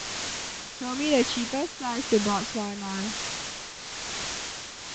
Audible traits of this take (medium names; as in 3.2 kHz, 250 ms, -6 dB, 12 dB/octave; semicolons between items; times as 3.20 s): phasing stages 6, 2 Hz, lowest notch 520–1600 Hz; a quantiser's noise floor 6-bit, dither triangular; tremolo triangle 1 Hz, depth 70%; A-law